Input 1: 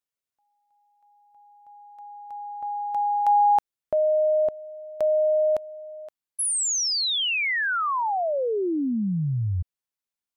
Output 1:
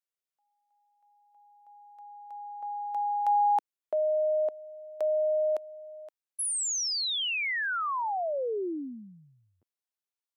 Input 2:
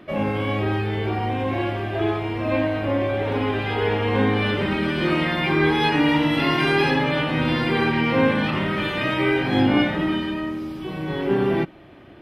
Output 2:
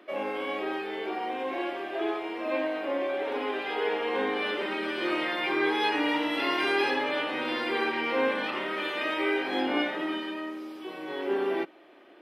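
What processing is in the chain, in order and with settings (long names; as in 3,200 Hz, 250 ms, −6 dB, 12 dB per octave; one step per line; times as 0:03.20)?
high-pass filter 320 Hz 24 dB per octave
level −5.5 dB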